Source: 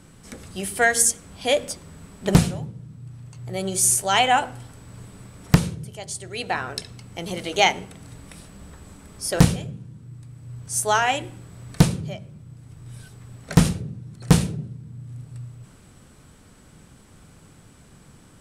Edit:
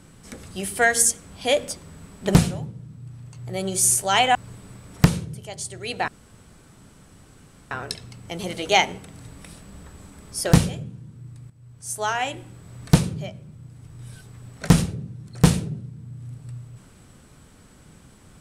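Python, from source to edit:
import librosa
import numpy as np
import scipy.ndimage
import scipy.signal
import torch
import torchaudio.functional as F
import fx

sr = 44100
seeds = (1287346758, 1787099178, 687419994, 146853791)

y = fx.edit(x, sr, fx.cut(start_s=4.35, length_s=0.5),
    fx.insert_room_tone(at_s=6.58, length_s=1.63),
    fx.fade_in_from(start_s=10.37, length_s=1.39, floor_db=-12.5), tone=tone)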